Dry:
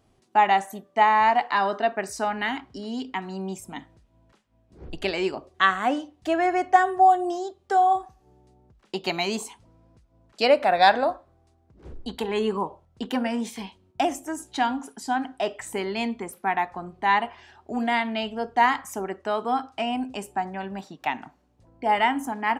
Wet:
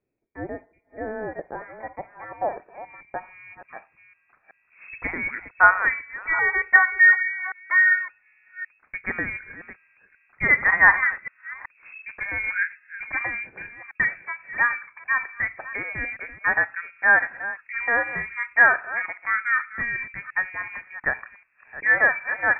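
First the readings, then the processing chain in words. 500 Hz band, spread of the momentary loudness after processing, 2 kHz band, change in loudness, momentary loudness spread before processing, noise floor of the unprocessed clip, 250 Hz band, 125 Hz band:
−8.5 dB, 21 LU, +11.0 dB, +3.5 dB, 14 LU, −64 dBFS, −12.5 dB, −2.5 dB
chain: delay that plays each chunk backwards 376 ms, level −14 dB
voice inversion scrambler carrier 2,600 Hz
low-pass filter sweep 390 Hz → 1,500 Hz, 0:00.84–0:04.60
level −1 dB

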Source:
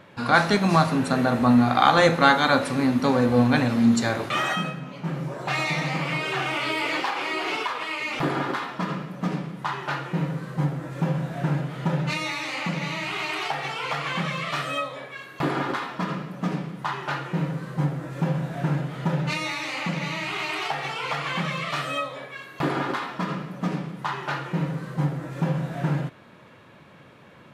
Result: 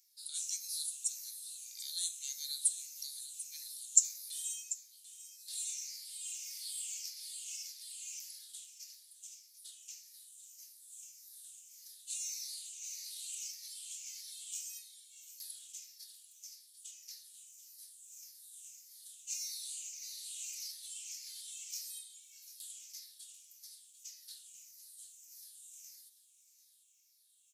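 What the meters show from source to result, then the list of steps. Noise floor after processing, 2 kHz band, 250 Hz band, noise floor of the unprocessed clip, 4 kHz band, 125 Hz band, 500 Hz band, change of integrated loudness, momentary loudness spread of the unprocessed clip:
−67 dBFS, −36.5 dB, below −40 dB, −49 dBFS, −13.5 dB, below −40 dB, below −40 dB, −15.0 dB, 11 LU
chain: rippled gain that drifts along the octave scale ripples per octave 0.73, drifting −1.7 Hz, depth 13 dB
inverse Chebyshev high-pass filter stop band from 1,200 Hz, stop band 80 dB
single-tap delay 742 ms −14.5 dB
level +5.5 dB

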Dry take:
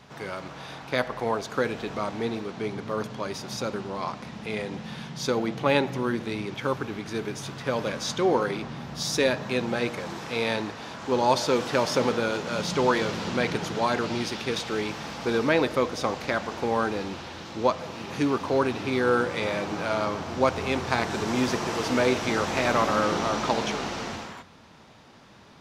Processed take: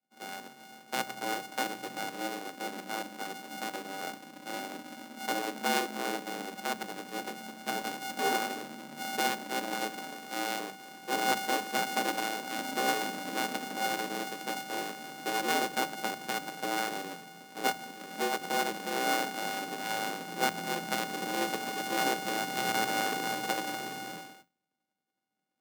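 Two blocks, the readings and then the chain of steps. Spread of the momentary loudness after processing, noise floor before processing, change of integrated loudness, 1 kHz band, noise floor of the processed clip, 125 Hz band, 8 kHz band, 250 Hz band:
11 LU, −49 dBFS, −6.0 dB, −3.0 dB, −71 dBFS, −16.5 dB, −0.5 dB, −10.0 dB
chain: samples sorted by size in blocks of 64 samples
downward expander −35 dBFS
frequency shifter +86 Hz
level −7 dB

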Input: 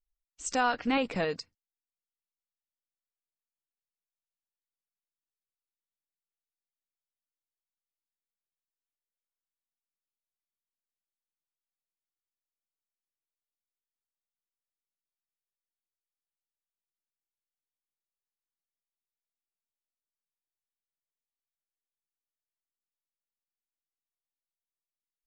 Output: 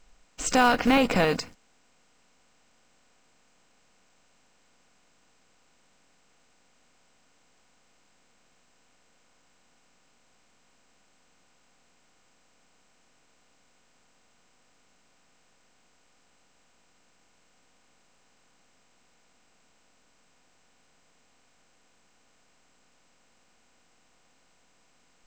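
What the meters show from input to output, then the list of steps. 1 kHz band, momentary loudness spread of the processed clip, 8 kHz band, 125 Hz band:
+6.5 dB, 12 LU, +7.0 dB, +9.5 dB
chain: compressor on every frequency bin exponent 0.6
in parallel at −10.5 dB: log-companded quantiser 4 bits
on the sum: low-shelf EQ 86 Hz +10.5 dB
level +2.5 dB

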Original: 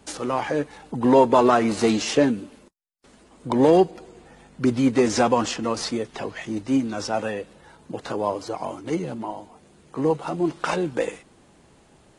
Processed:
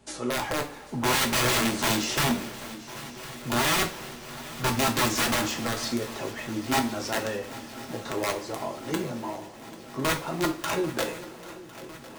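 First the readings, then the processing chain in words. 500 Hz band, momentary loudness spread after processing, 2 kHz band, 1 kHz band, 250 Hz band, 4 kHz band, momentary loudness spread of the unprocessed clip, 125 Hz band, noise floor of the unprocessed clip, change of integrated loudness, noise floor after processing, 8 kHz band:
−9.5 dB, 16 LU, +4.0 dB, −4.5 dB, −7.5 dB, +5.0 dB, 15 LU, −1.5 dB, −56 dBFS, −4.5 dB, −44 dBFS, +5.0 dB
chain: wrap-around overflow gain 15.5 dB
feedback echo with a long and a short gap by turns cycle 1,054 ms, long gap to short 3 to 1, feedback 70%, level −18 dB
coupled-rooms reverb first 0.28 s, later 3 s, from −22 dB, DRR 1.5 dB
level −5.5 dB

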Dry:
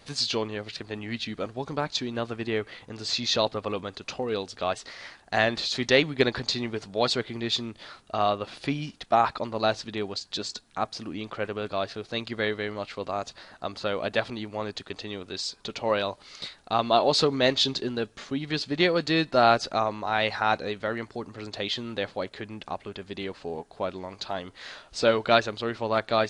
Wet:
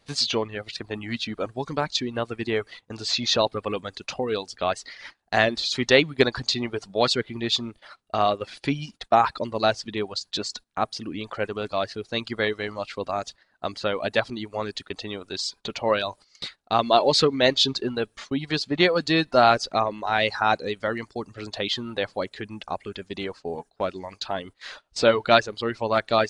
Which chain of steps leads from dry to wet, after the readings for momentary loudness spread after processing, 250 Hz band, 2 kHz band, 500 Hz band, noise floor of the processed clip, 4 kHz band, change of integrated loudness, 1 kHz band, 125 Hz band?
14 LU, +2.0 dB, +3.0 dB, +3.0 dB, −68 dBFS, +3.0 dB, +3.0 dB, +3.0 dB, +2.0 dB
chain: noise gate −43 dBFS, range −13 dB
reverb reduction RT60 0.76 s
level +3.5 dB

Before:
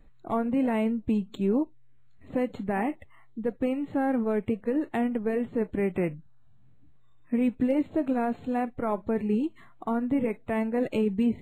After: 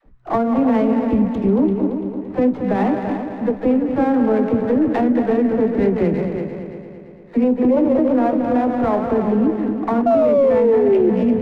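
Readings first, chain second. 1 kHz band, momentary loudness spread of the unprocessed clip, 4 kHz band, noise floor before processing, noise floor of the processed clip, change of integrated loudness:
+11.0 dB, 7 LU, can't be measured, −53 dBFS, −38 dBFS, +11.0 dB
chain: delay that plays each chunk backwards 142 ms, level −9 dB
gain on a spectral selection 0:07.43–0:07.95, 320–1,200 Hz +10 dB
low-pass filter 1,600 Hz 12 dB per octave
noise gate −39 dBFS, range −10 dB
downward compressor 1.5 to 1, threshold −47 dBFS, peak gain reduction 11.5 dB
tuned comb filter 63 Hz, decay 0.18 s, harmonics all, mix 60%
all-pass dispersion lows, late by 59 ms, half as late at 370 Hz
on a send: echo machine with several playback heads 113 ms, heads second and third, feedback 50%, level −9 dB
on the sum: sound drawn into the spectrogram fall, 0:10.06–0:11.10, 350–700 Hz −31 dBFS
boost into a limiter +28.5 dB
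windowed peak hold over 5 samples
level −7 dB

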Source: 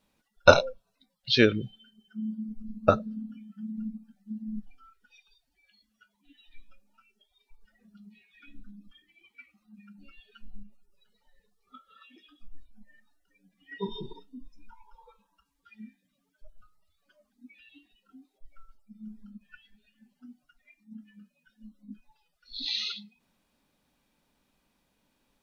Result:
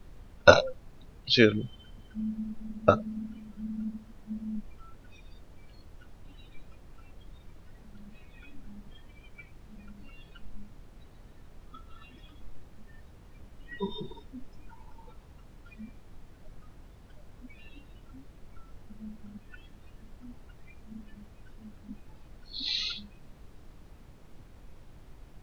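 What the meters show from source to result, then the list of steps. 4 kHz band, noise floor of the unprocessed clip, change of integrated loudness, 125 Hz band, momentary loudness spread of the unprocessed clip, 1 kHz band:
0.0 dB, −77 dBFS, 0.0 dB, +0.5 dB, 23 LU, 0.0 dB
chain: background noise brown −48 dBFS

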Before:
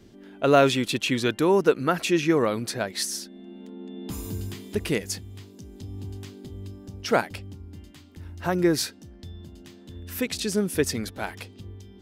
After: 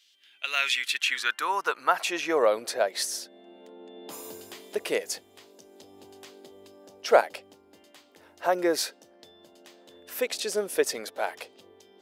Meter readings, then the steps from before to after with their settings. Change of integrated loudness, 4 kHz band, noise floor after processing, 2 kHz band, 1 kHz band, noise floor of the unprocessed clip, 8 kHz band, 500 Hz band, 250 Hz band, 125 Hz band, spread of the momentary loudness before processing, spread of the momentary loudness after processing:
−2.0 dB, 0.0 dB, −59 dBFS, +1.5 dB, 0.0 dB, −49 dBFS, −1.5 dB, −2.5 dB, −12.5 dB, below −25 dB, 22 LU, 18 LU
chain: high-pass filter sweep 3,100 Hz → 560 Hz, 0:00.18–0:02.49
level −1.5 dB

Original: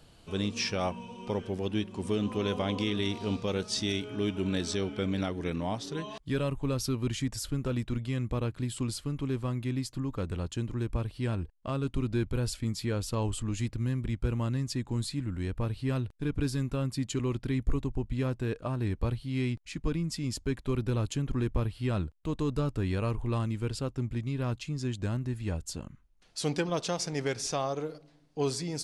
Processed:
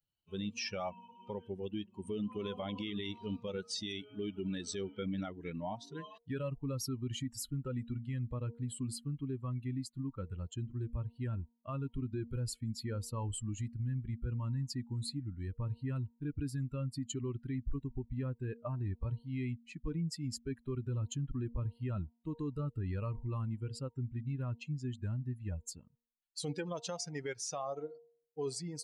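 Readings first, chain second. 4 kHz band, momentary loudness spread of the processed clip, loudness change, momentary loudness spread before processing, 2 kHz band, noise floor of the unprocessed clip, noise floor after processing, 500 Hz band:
−8.0 dB, 4 LU, −7.0 dB, 4 LU, −10.0 dB, −58 dBFS, −73 dBFS, −8.5 dB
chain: spectral dynamics exaggerated over time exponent 2
brickwall limiter −31 dBFS, peak gain reduction 11 dB
hum removal 234.4 Hz, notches 4
level +1.5 dB

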